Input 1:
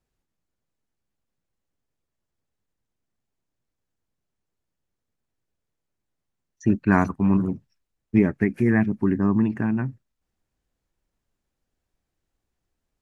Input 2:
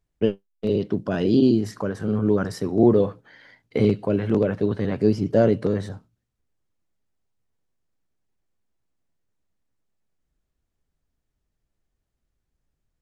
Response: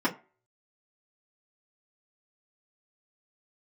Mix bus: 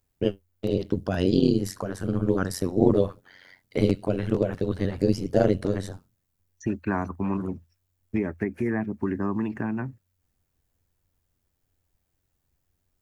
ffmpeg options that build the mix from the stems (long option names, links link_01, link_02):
-filter_complex "[0:a]acrossover=split=310|1300[link_01][link_02][link_03];[link_01]acompressor=threshold=-32dB:ratio=4[link_04];[link_02]acompressor=threshold=-26dB:ratio=4[link_05];[link_03]acompressor=threshold=-42dB:ratio=4[link_06];[link_04][link_05][link_06]amix=inputs=3:normalize=0,volume=0dB[link_07];[1:a]aemphasis=mode=production:type=50fm,tremolo=f=92:d=0.974,volume=1dB[link_08];[link_07][link_08]amix=inputs=2:normalize=0,equalizer=frequency=84:width_type=o:width=0.23:gain=10.5"